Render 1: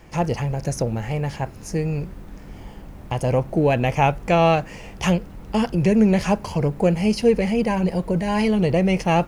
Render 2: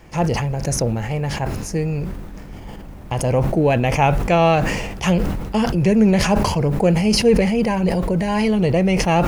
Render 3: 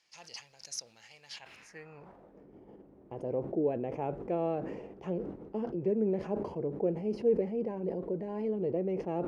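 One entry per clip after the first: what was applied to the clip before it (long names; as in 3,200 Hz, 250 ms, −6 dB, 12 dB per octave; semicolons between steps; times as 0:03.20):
level that may fall only so fast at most 38 dB per second; level +1.5 dB
band-pass filter sweep 4,700 Hz → 380 Hz, 0:01.27–0:02.45; level −8.5 dB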